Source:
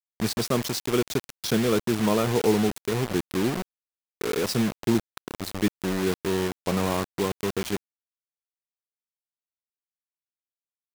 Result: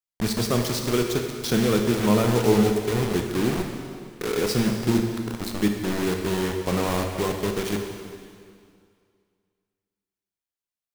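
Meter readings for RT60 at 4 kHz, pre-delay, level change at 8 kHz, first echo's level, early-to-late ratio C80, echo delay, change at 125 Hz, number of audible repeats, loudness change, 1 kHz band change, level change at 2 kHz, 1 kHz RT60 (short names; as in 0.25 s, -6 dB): 2.0 s, 6 ms, +1.5 dB, none, 5.5 dB, none, +4.0 dB, none, +2.5 dB, +1.5 dB, +2.0 dB, 2.2 s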